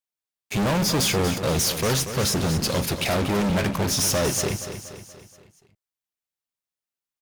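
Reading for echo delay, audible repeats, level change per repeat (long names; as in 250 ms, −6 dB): 237 ms, 5, −6.0 dB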